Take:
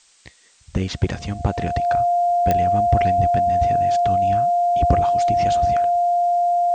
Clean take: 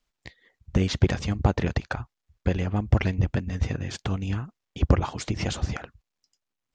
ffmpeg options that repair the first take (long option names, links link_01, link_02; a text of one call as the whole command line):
ffmpeg -i in.wav -af "adeclick=threshold=4,bandreject=frequency=700:width=30,agate=range=-21dB:threshold=-39dB" out.wav